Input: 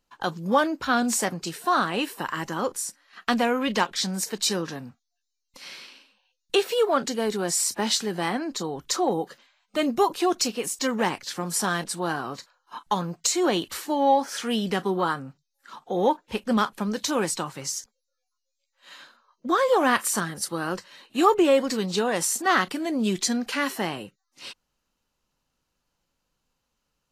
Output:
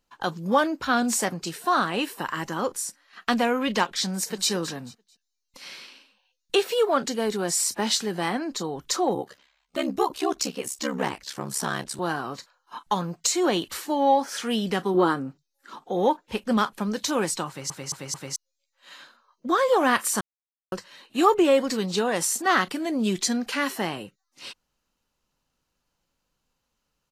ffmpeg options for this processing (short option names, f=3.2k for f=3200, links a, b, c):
-filter_complex "[0:a]asplit=2[a][b];[b]afade=t=in:st=4.08:d=0.01,afade=t=out:st=4.5:d=0.01,aecho=0:1:220|440|660:0.237137|0.0592843|0.0148211[c];[a][c]amix=inputs=2:normalize=0,asettb=1/sr,asplit=3[d][e][f];[d]atrim=end=9.144[g];[e]atrim=start=9.14:end=11.99,asetpts=PTS-STARTPTS,afade=t=in:d=0.004:c=qsin,afade=t=out:st=2.846:d=0.004:c=qsin,aeval=exprs='val(0)*sin(2*PI*34*n/s)':c=same[h];[f]atrim=start=11.986[i];[g][h]acrossfade=d=0.004:c1=hsin:c2=qsin[j];[j][i]acrossfade=d=0.004:c1=qsin:c2=hsin,asettb=1/sr,asplit=3[k][l][m];[k]atrim=end=14.944[n];[l]atrim=start=14.94:end=15.88,asetpts=PTS-STARTPTS,afade=t=in:d=0.004:c=qsin,afade=t=out:st=0.936:d=0.004:c=qsin,equalizer=f=330:w=1.3:g=10[o];[m]atrim=start=15.876[p];[n][o]acrossfade=d=0.004:c1=hsin:c2=qsin[q];[q][p]acrossfade=d=0.004:c1=qsin:c2=hsin,asplit=7[r][s][t][u][v][w][x];[r]atrim=end=17.702[y];[s]atrim=start=17.478:end=17.702[z];[t]atrim=start=17.478:end=17.702[aa];[u]atrim=start=17.478:end=17.702[ab];[v]atrim=start=18.358:end=20.21,asetpts=PTS-STARTPTS,afade=t=out:st=1.848:d=0.004:c=hsin[ac];[w]atrim=start=20.21:end=20.72,asetpts=PTS-STARTPTS,volume=0[ad];[x]atrim=start=20.72,asetpts=PTS-STARTPTS,afade=t=in:d=0.004:c=hsin[ae];[y][z]acrossfade=d=0.004:c1=hsin:c2=hsin[af];[af][aa]acrossfade=d=0.004:c1=hsin:c2=hsin[ag];[ag][ab]acrossfade=d=0.004:c1=hsin:c2=hsin[ah];[ac][ad][ae]concat=n=3:v=0:a=1[ai];[ah][ai]acrossfade=d=0.004:c1=hsin:c2=hsin"